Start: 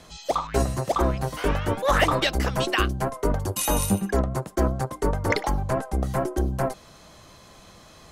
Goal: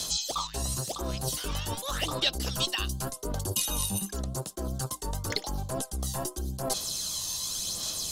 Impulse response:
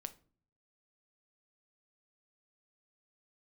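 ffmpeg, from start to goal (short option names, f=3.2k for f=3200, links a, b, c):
-filter_complex "[0:a]acrossover=split=3400[a][b];[b]acompressor=threshold=-47dB:ratio=4:attack=1:release=60[c];[a][c]amix=inputs=2:normalize=0,aphaser=in_gain=1:out_gain=1:delay=1.1:decay=0.41:speed=0.89:type=sinusoidal,areverse,acompressor=threshold=-30dB:ratio=10,areverse,aexciter=amount=11.9:drive=4.6:freq=3.2k"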